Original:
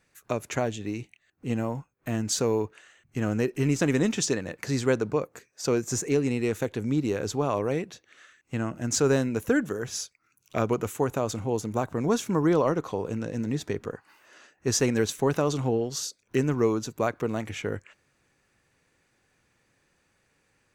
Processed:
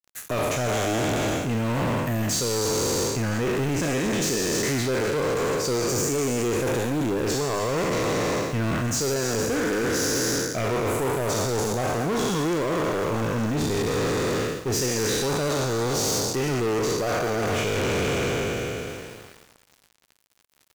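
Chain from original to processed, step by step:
peak hold with a decay on every bin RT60 2.70 s
reversed playback
downward compressor 16 to 1, threshold −33 dBFS, peak gain reduction 19.5 dB
reversed playback
parametric band 110 Hz +3 dB 0.48 octaves
leveller curve on the samples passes 5
bit reduction 8 bits
on a send: single-tap delay 287 ms −22.5 dB

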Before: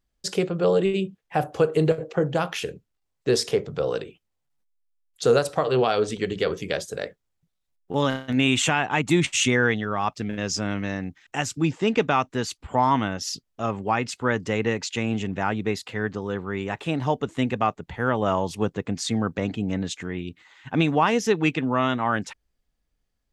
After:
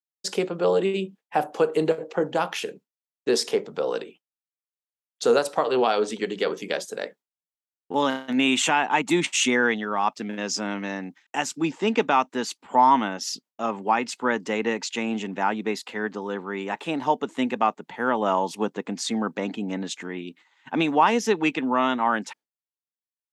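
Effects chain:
Chebyshev high-pass filter 220 Hz, order 3
parametric band 900 Hz +6.5 dB 0.33 octaves
downward expander −44 dBFS

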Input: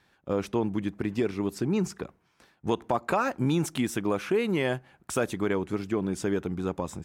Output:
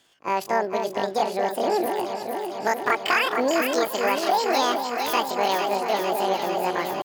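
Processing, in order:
low-shelf EQ 150 Hz −8 dB
pitch shifter +11.5 semitones
on a send: delay that swaps between a low-pass and a high-pass 226 ms, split 1,000 Hz, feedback 85%, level −4.5 dB
on the sum: level +4.5 dB

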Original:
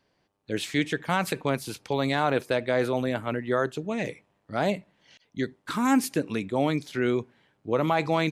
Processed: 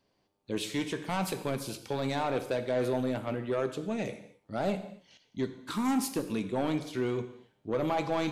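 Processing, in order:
parametric band 1,700 Hz −6.5 dB 0.83 octaves
soft clipping −20.5 dBFS, distortion −13 dB
reverb whose tail is shaped and stops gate 290 ms falling, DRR 8 dB
level −2.5 dB

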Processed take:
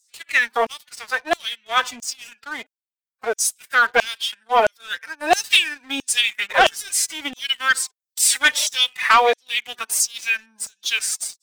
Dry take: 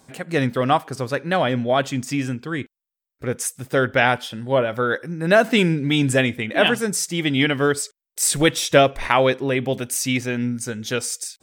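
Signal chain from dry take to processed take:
phase-vocoder pitch shift with formants kept +10.5 semitones
auto-filter high-pass saw down 1.5 Hz 600–6,900 Hz
leveller curve on the samples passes 2
level −3.5 dB

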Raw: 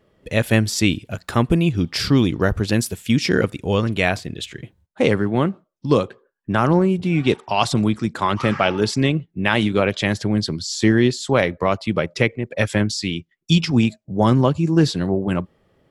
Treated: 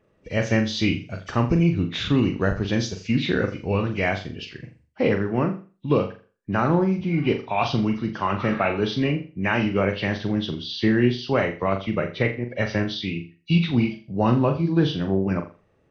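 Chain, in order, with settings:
hearing-aid frequency compression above 1,900 Hz 1.5 to 1
flutter between parallel walls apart 7.1 metres, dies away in 0.35 s
level −4.5 dB

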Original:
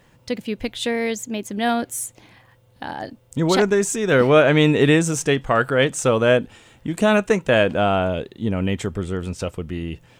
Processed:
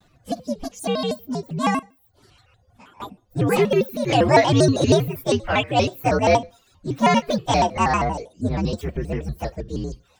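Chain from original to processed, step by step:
partials spread apart or drawn together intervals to 129%
high-shelf EQ 6,800 Hz −7 dB
0:01.79–0:03.00: downward compressor 8 to 1, threshold −49 dBFS, peak gain reduction 25 dB
reverb reduction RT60 0.61 s
on a send at −20.5 dB: convolution reverb RT60 0.35 s, pre-delay 46 ms
on the sum: pitch modulation by a square or saw wave square 6.3 Hz, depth 250 cents
level +2 dB

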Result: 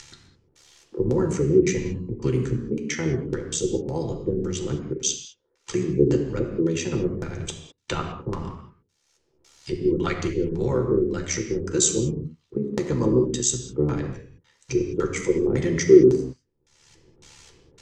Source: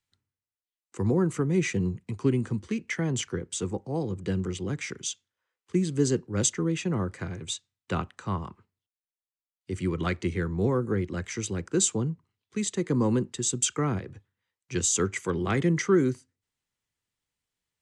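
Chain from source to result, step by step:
upward compression, threshold −26 dBFS
amplitude modulation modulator 71 Hz, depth 65%
auto-filter low-pass square 1.8 Hz 390–6,200 Hz
convolution reverb, pre-delay 6 ms, DRR 3 dB
level +2.5 dB

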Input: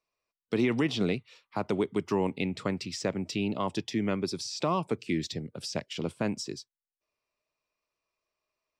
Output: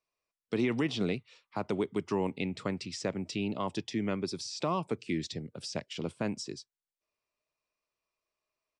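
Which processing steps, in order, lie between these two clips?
downsampling to 22,050 Hz
level −3 dB

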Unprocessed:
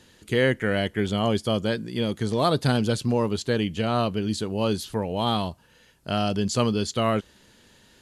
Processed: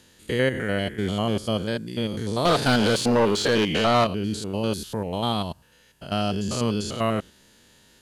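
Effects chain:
spectrum averaged block by block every 100 ms
high-shelf EQ 6,400 Hz +6.5 dB
0:02.45–0:04.07: mid-hump overdrive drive 22 dB, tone 3,300 Hz, clips at −10.5 dBFS

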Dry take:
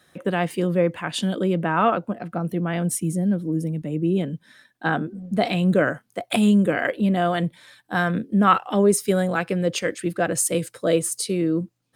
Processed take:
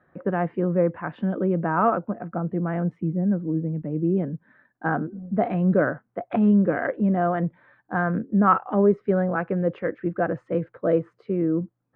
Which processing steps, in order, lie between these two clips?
low-pass filter 1,600 Hz 24 dB per octave
level −1 dB

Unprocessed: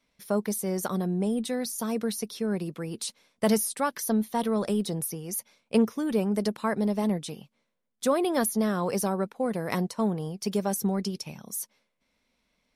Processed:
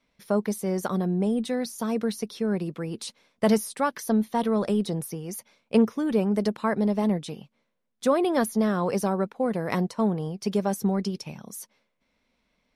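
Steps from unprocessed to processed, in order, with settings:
low-pass filter 3,700 Hz 6 dB per octave
level +2.5 dB

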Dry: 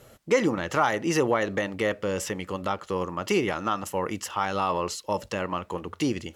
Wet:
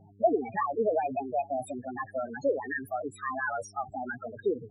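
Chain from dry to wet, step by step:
change of speed 1.35×
spectral peaks only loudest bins 4
hum with harmonics 100 Hz, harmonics 4, −58 dBFS −6 dB per octave

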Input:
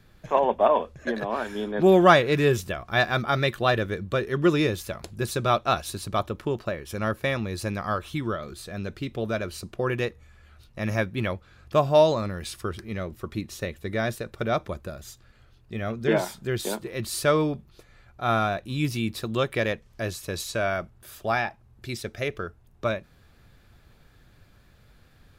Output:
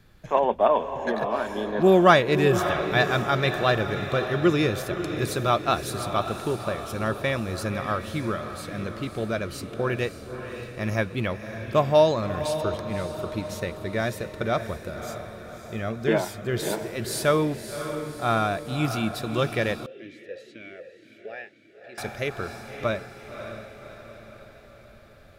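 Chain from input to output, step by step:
feedback delay with all-pass diffusion 575 ms, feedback 54%, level −9 dB
0:19.86–0:21.98: formant filter swept between two vowels e-i 2 Hz

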